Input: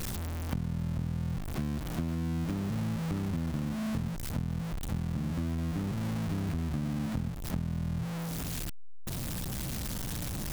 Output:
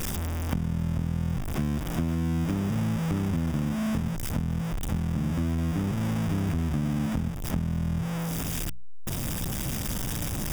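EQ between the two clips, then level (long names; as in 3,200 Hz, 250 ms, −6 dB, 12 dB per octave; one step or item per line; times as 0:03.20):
Butterworth band-reject 4,200 Hz, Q 5.5
mains-hum notches 60/120/180 Hz
+5.5 dB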